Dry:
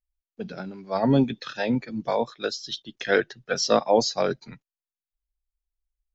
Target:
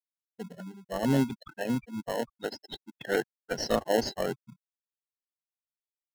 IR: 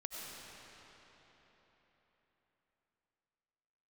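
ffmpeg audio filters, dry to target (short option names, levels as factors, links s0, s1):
-filter_complex "[0:a]afftfilt=real='re*gte(hypot(re,im),0.0631)':imag='im*gte(hypot(re,im),0.0631)':win_size=1024:overlap=0.75,asplit=2[s0][s1];[s1]acrusher=samples=37:mix=1:aa=0.000001,volume=0.708[s2];[s0][s2]amix=inputs=2:normalize=0,volume=0.355"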